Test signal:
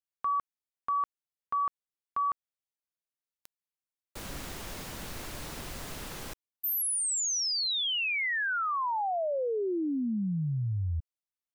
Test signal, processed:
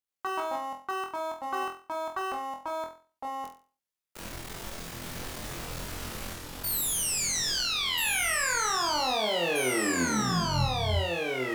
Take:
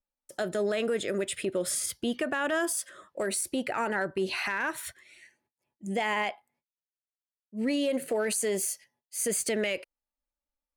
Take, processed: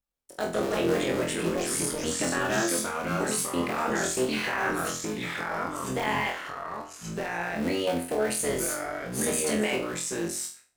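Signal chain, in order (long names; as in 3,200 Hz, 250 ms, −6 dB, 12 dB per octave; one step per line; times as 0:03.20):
sub-harmonics by changed cycles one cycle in 3, muted
delay with pitch and tempo change per echo 82 ms, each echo −3 semitones, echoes 2
flutter between parallel walls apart 4 metres, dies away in 0.37 s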